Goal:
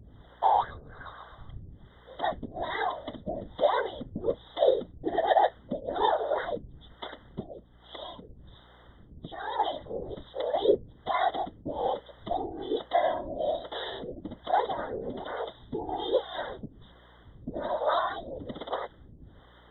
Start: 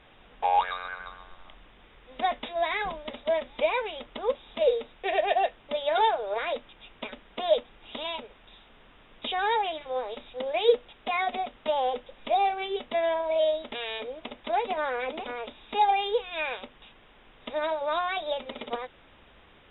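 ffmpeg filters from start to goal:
-filter_complex "[0:a]lowshelf=f=380:g=11,asplit=3[a][b][c];[a]afade=t=out:st=7.42:d=0.02[d];[b]acompressor=threshold=-39dB:ratio=2,afade=t=in:st=7.42:d=0.02,afade=t=out:st=9.58:d=0.02[e];[c]afade=t=in:st=9.58:d=0.02[f];[d][e][f]amix=inputs=3:normalize=0,afftfilt=real='hypot(re,im)*cos(2*PI*random(0))':imag='hypot(re,im)*sin(2*PI*random(1))':win_size=512:overlap=0.75,acrossover=split=420[g][h];[g]aeval=exprs='val(0)*(1-1/2+1/2*cos(2*PI*1.2*n/s))':c=same[i];[h]aeval=exprs='val(0)*(1-1/2-1/2*cos(2*PI*1.2*n/s))':c=same[j];[i][j]amix=inputs=2:normalize=0,aeval=exprs='val(0)+0.000562*(sin(2*PI*60*n/s)+sin(2*PI*2*60*n/s)/2+sin(2*PI*3*60*n/s)/3+sin(2*PI*4*60*n/s)/4+sin(2*PI*5*60*n/s)/5)':c=same,asuperstop=centerf=2500:order=12:qfactor=2.5,volume=7dB"

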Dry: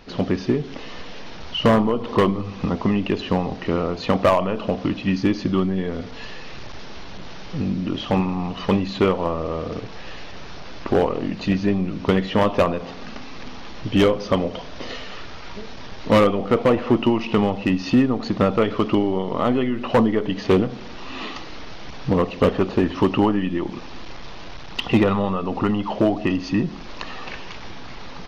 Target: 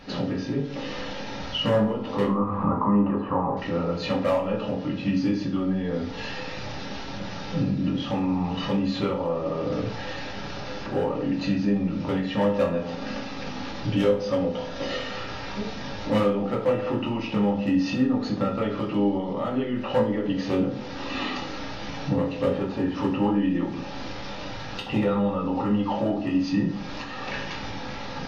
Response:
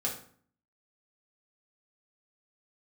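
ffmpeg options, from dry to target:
-filter_complex "[0:a]alimiter=limit=-20.5dB:level=0:latency=1:release=358,asettb=1/sr,asplit=3[a][b][c];[a]atrim=end=2.274[d];[b]atrim=start=2.27:end=3.57,asetpts=PTS-STARTPTS,afade=t=in:d=0.004:c=qsin,afade=t=out:st=1.296:d=0.004:c=qsin,lowpass=f=1.1k:t=q:w=7.6[e];[c]atrim=start=3.566[f];[d][e]acrossfade=d=0.004:c1=hsin:c2=qsin[g];[g][f]acrossfade=d=0.004:c1=qsin:c2=hsin[h];[1:a]atrim=start_sample=2205,asetrate=48510,aresample=44100[i];[h][i]afir=irnorm=-1:irlink=0"

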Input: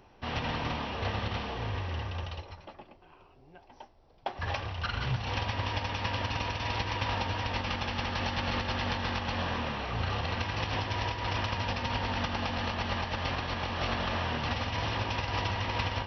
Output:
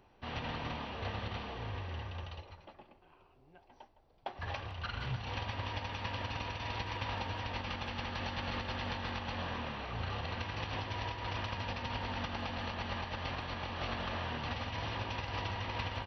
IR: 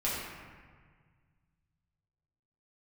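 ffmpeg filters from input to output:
-filter_complex "[0:a]bandreject=f=5.3k:w=7.4,asplit=2[a][b];[b]adelay=160,highpass=300,lowpass=3.4k,asoftclip=type=hard:threshold=-26.5dB,volume=-15dB[c];[a][c]amix=inputs=2:normalize=0,volume=-6.5dB"

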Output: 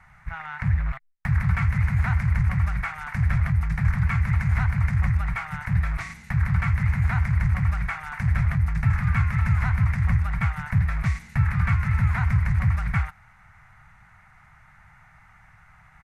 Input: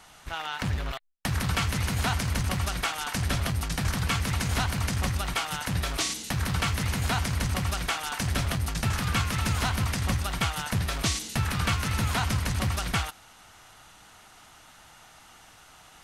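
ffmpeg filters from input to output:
-af "firequalizer=gain_entry='entry(150,0);entry(290,-26);entry(430,-24);entry(810,-11);entry(2100,-3);entry(3000,-27)':delay=0.05:min_phase=1,volume=7.5dB"

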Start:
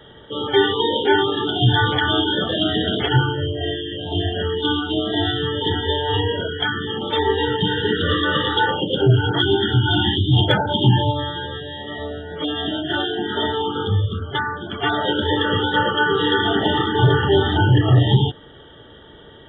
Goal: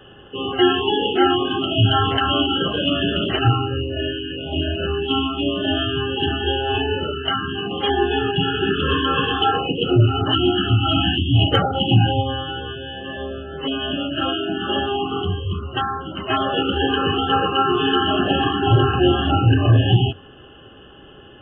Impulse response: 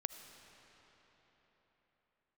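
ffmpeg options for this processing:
-af "bandreject=f=50:t=h:w=6,bandreject=f=100:t=h:w=6,asetrate=40131,aresample=44100"

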